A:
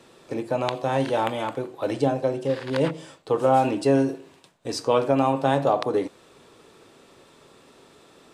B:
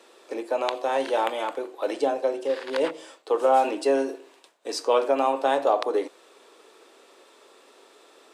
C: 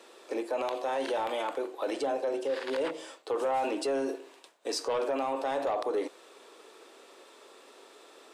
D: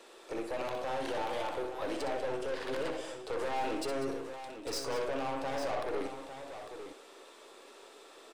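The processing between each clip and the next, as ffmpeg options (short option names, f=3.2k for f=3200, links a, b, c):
-af "highpass=f=340:w=0.5412,highpass=f=340:w=1.3066"
-af "asoftclip=type=tanh:threshold=-15dB,alimiter=limit=-23.5dB:level=0:latency=1:release=41"
-filter_complex "[0:a]aeval=exprs='(tanh(44.7*val(0)+0.4)-tanh(0.4))/44.7':c=same,asplit=2[a][b];[b]aecho=0:1:62|194|851:0.422|0.237|0.335[c];[a][c]amix=inputs=2:normalize=0"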